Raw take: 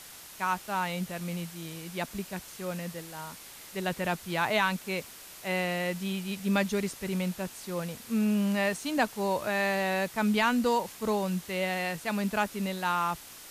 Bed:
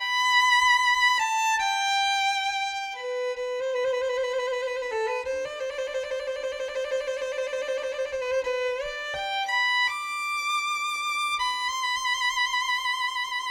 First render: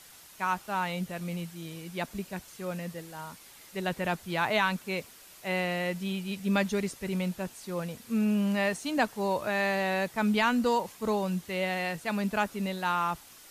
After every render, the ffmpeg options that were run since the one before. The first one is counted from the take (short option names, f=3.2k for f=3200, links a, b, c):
-af "afftdn=nr=6:nf=-48"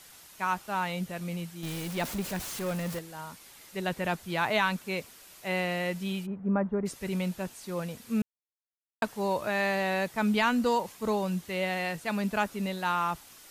-filter_complex "[0:a]asettb=1/sr,asplit=3[a][b][c];[a]atrim=end=1.634[d];[b]atrim=start=1.63:end=2.99,asetpts=PTS-STARTPTS,afade=t=in:d=0.004:c=qsin,afade=t=out:st=1.356:d=0.004:c=qsin,aeval=exprs='val(0)+0.5*0.02*sgn(val(0))':c=same[e];[c]atrim=start=2.986[f];[d][e]acrossfade=d=0.004:c1=hsin:c2=qsin[g];[g][f]acrossfade=d=0.004:c1=qsin:c2=hsin,asplit=3[h][i][j];[h]afade=t=out:st=6.25:d=0.02[k];[i]lowpass=f=1.3k:w=0.5412,lowpass=f=1.3k:w=1.3066,afade=t=in:st=6.25:d=0.02,afade=t=out:st=6.85:d=0.02[l];[j]afade=t=in:st=6.85:d=0.02[m];[k][l][m]amix=inputs=3:normalize=0,asplit=3[n][o][p];[n]atrim=end=8.22,asetpts=PTS-STARTPTS,afade=t=out:st=8.216:d=0.004:c=hsin[q];[o]atrim=start=8.22:end=9.02,asetpts=PTS-STARTPTS,volume=0[r];[p]atrim=start=9.02,asetpts=PTS-STARTPTS,afade=t=in:d=0.004:c=hsin[s];[q][r][s]concat=n=3:v=0:a=1"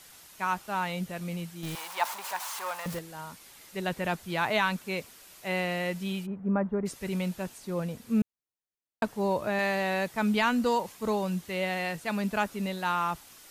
-filter_complex "[0:a]asettb=1/sr,asplit=3[a][b][c];[a]atrim=end=1.754[d];[b]atrim=start=1.75:end=2.86,asetpts=PTS-STARTPTS,afade=t=in:d=0.004:c=qsin,afade=t=out:st=1.106:d=0.004:c=qsin,highpass=f=930:t=q:w=4.1[e];[c]atrim=start=2.856[f];[d][e]acrossfade=d=0.004:c1=hsin:c2=qsin[g];[g][f]acrossfade=d=0.004:c1=qsin:c2=hsin,asettb=1/sr,asplit=3[h][i][j];[h]atrim=end=7.584[k];[i]atrim=start=7.58:end=9.59,asetpts=PTS-STARTPTS,afade=t=in:d=0.004:c=qsin,afade=t=out:st=2.006:d=0.004:c=qsin,tiltshelf=f=840:g=3.5[l];[j]atrim=start=9.586[m];[k][l]acrossfade=d=0.004:c1=hsin:c2=qsin[n];[n][m]acrossfade=d=0.004:c1=qsin:c2=hsin"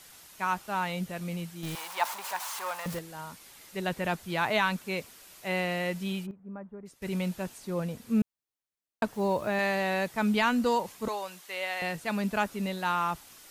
-filter_complex "[0:a]asettb=1/sr,asplit=3[a][b][c];[a]atrim=end=9.134[d];[b]atrim=start=9.13:end=9.59,asetpts=PTS-STARTPTS,afade=t=in:d=0.004:c=qsin,afade=t=out:st=0.456:d=0.004:c=qsin,acrusher=bits=8:mix=0:aa=0.5[e];[c]atrim=start=9.586[f];[d][e]acrossfade=d=0.004:c1=hsin:c2=qsin[g];[g][f]acrossfade=d=0.004:c1=qsin:c2=hsin,asettb=1/sr,asplit=3[h][i][j];[h]atrim=end=11.084[k];[i]atrim=start=11.08:end=11.82,asetpts=PTS-STARTPTS,afade=t=in:d=0.004:c=qsin,afade=t=out:st=0.736:d=0.004:c=qsin,highpass=690[l];[j]atrim=start=11.816[m];[k][l]acrossfade=d=0.004:c1=hsin:c2=qsin[n];[n][m]acrossfade=d=0.004:c1=qsin:c2=hsin,asplit=3[o][p][q];[o]atrim=end=6.31,asetpts=PTS-STARTPTS,afade=t=out:st=6.08:d=0.23:c=log:silence=0.188365[r];[p]atrim=start=6.31:end=7.02,asetpts=PTS-STARTPTS,volume=-14.5dB[s];[q]atrim=start=7.02,asetpts=PTS-STARTPTS,afade=t=in:d=0.23:c=log:silence=0.188365[t];[r][s][t]concat=n=3:v=0:a=1"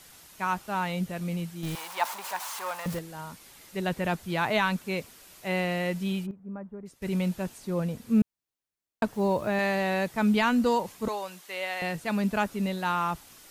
-af "lowshelf=f=410:g=4.5"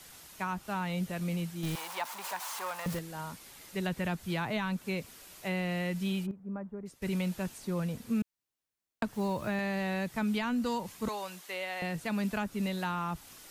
-filter_complex "[0:a]acrossover=split=280|990[a][b][c];[a]acompressor=threshold=-32dB:ratio=4[d];[b]acompressor=threshold=-40dB:ratio=4[e];[c]acompressor=threshold=-37dB:ratio=4[f];[d][e][f]amix=inputs=3:normalize=0"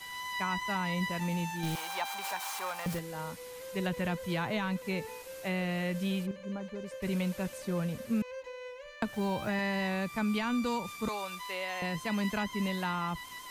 -filter_complex "[1:a]volume=-16.5dB[a];[0:a][a]amix=inputs=2:normalize=0"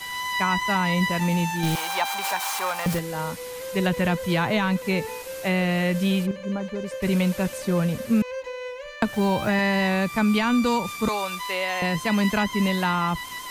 -af "volume=10dB"